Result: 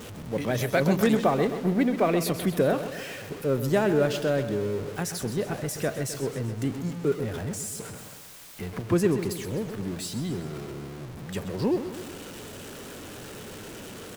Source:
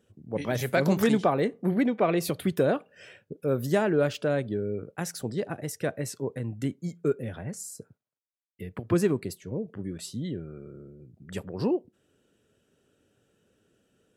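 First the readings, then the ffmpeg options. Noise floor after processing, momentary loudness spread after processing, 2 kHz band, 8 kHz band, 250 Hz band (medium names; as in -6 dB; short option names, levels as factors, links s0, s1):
-42 dBFS, 17 LU, +2.0 dB, +4.5 dB, +1.5 dB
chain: -af "aeval=exprs='val(0)+0.5*0.0168*sgn(val(0))':c=same,aecho=1:1:129|258|387|516|645|774:0.282|0.161|0.0916|0.0522|0.0298|0.017"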